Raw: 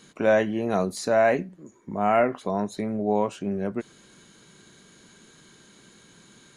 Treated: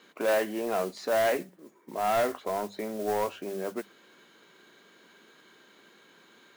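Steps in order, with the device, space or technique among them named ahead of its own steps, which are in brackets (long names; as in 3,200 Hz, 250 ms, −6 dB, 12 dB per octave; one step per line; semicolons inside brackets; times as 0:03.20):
carbon microphone (band-pass filter 360–3,300 Hz; soft clipping −21 dBFS, distortion −11 dB; noise that follows the level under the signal 17 dB)
mains-hum notches 50/100/150/200 Hz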